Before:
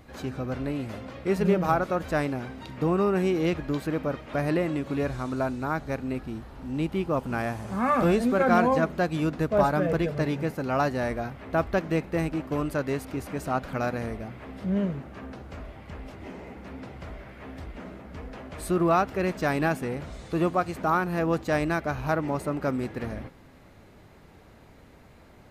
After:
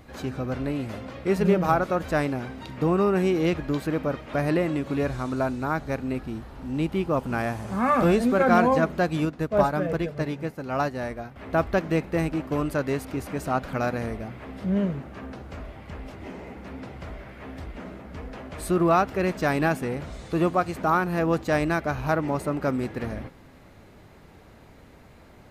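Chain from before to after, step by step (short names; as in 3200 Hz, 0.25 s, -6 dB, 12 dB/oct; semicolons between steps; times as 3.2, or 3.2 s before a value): 9.25–11.36 upward expander 1.5:1, over -37 dBFS; gain +2 dB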